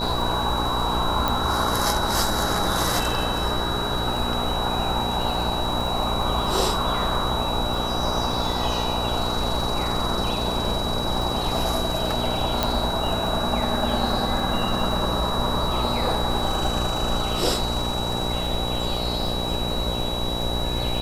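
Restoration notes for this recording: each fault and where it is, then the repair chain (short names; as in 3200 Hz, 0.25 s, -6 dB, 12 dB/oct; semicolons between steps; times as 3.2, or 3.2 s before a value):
buzz 60 Hz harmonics 16 -29 dBFS
crackle 34/s -29 dBFS
tone 3900 Hz -29 dBFS
1.28 pop
12.63 pop -6 dBFS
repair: de-click; de-hum 60 Hz, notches 16; notch 3900 Hz, Q 30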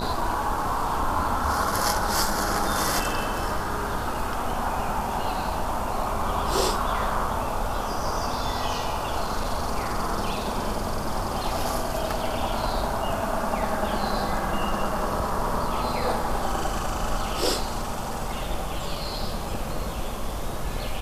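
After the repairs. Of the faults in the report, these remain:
none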